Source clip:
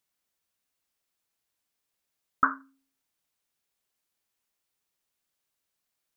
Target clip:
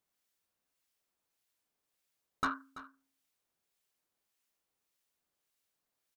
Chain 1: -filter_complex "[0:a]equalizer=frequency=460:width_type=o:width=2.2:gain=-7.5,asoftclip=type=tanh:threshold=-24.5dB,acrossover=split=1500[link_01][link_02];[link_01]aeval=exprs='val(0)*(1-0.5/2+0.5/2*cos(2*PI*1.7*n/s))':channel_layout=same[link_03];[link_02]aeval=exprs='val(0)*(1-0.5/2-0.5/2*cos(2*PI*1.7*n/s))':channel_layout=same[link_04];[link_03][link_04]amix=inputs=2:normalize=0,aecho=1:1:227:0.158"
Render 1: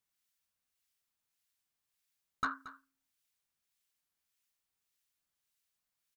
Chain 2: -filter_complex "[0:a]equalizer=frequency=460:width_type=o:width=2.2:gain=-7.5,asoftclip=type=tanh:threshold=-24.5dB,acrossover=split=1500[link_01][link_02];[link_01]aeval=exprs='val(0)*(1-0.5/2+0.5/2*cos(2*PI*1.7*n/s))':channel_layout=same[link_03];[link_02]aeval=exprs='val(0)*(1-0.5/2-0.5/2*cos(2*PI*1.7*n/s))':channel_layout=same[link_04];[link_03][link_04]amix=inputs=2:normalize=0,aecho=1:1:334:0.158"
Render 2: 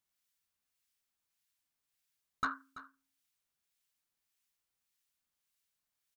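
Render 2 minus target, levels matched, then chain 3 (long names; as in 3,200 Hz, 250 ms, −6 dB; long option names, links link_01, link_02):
500 Hz band −5.0 dB
-filter_complex "[0:a]equalizer=frequency=460:width_type=o:width=2.2:gain=3,asoftclip=type=tanh:threshold=-24.5dB,acrossover=split=1500[link_01][link_02];[link_01]aeval=exprs='val(0)*(1-0.5/2+0.5/2*cos(2*PI*1.7*n/s))':channel_layout=same[link_03];[link_02]aeval=exprs='val(0)*(1-0.5/2-0.5/2*cos(2*PI*1.7*n/s))':channel_layout=same[link_04];[link_03][link_04]amix=inputs=2:normalize=0,aecho=1:1:334:0.158"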